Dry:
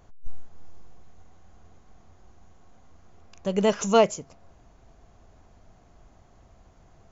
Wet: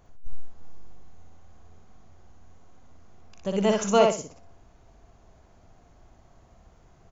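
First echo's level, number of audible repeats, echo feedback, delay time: −3.0 dB, 3, 25%, 60 ms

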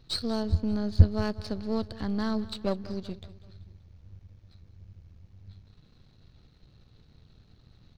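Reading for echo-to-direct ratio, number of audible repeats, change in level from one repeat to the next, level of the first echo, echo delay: −16.5 dB, 3, −6.0 dB, −18.0 dB, 192 ms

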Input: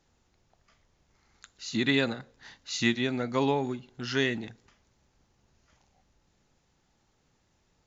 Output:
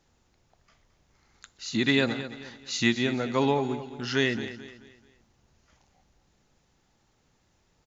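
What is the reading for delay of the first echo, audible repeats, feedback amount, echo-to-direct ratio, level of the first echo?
218 ms, 3, 37%, −12.5 dB, −13.0 dB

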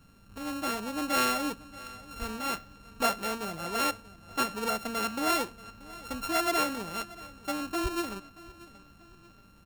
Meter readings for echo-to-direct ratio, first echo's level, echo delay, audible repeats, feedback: −19.0 dB, −20.0 dB, 632 ms, 2, 42%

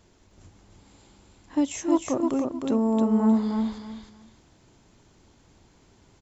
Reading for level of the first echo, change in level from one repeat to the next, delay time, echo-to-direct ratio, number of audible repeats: −4.0 dB, −13.0 dB, 310 ms, −4.0 dB, 3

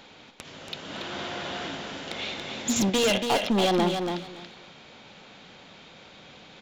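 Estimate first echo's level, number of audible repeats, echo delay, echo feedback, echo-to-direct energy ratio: −6.0 dB, 2, 282 ms, 17%, −6.0 dB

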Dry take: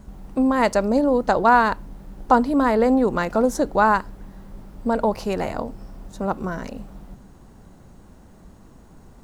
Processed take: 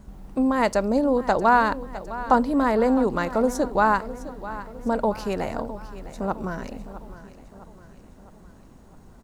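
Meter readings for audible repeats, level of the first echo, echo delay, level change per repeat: 4, −15.0 dB, 658 ms, −6.0 dB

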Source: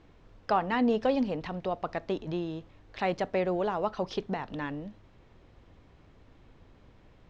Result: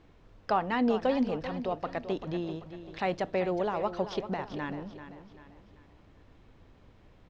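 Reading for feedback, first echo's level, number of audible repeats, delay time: 41%, −11.5 dB, 4, 389 ms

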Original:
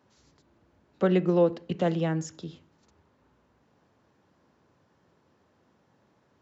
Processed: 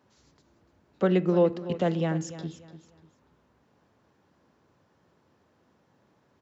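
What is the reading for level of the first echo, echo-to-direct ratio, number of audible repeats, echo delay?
−14.0 dB, −13.5 dB, 3, 294 ms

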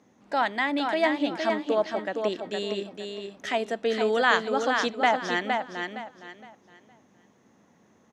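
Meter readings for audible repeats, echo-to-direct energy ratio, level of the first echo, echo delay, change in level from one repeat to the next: 3, −4.5 dB, −5.0 dB, 464 ms, −11.0 dB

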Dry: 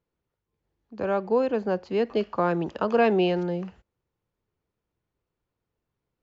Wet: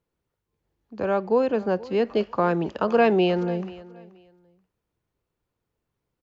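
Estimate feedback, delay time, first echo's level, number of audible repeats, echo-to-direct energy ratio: 21%, 480 ms, −20.0 dB, 2, −20.0 dB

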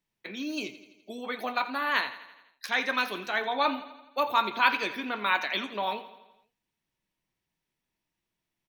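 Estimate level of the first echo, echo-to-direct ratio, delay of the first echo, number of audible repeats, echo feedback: −15.0 dB, −13.0 dB, 84 ms, 5, 59%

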